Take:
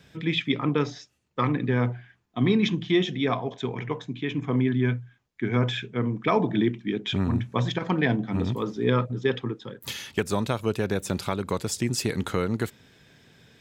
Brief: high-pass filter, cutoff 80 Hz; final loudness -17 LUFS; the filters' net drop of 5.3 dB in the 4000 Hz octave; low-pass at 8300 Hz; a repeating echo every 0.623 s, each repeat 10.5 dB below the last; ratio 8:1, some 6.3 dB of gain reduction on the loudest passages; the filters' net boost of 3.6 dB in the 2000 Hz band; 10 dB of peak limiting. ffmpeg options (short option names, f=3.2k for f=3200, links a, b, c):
-af "highpass=80,lowpass=8.3k,equalizer=f=2k:t=o:g=6.5,equalizer=f=4k:t=o:g=-9,acompressor=threshold=-24dB:ratio=8,alimiter=limit=-21dB:level=0:latency=1,aecho=1:1:623|1246|1869:0.299|0.0896|0.0269,volume=15dB"